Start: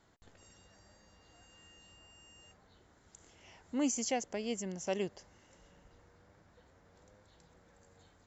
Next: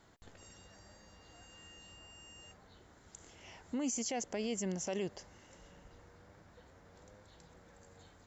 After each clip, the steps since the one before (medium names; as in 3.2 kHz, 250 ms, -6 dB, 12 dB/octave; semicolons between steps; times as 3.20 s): peak limiter -32.5 dBFS, peak gain reduction 11 dB; trim +4 dB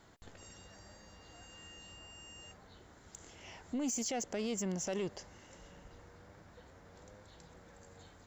saturation -32 dBFS, distortion -17 dB; trim +2.5 dB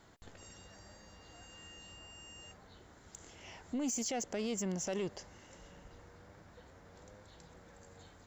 no audible change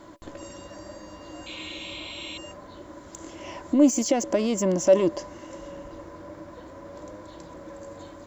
painted sound noise, 1.46–2.38 s, 2.1–4.2 kHz -48 dBFS; small resonant body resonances 320/570/1000 Hz, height 17 dB, ringing for 60 ms; trim +8 dB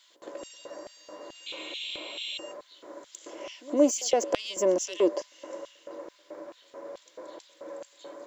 LFO high-pass square 2.3 Hz 450–3200 Hz; pre-echo 117 ms -22.5 dB; trim -3 dB